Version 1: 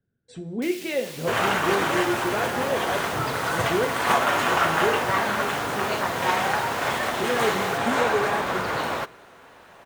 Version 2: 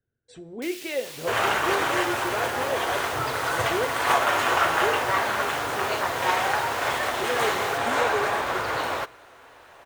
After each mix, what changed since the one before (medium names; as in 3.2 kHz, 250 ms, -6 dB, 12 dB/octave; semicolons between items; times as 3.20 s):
speech: send -6.5 dB; master: add peaking EQ 190 Hz -12.5 dB 0.75 oct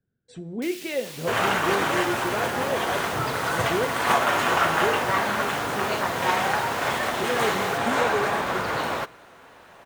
master: add peaking EQ 190 Hz +12.5 dB 0.75 oct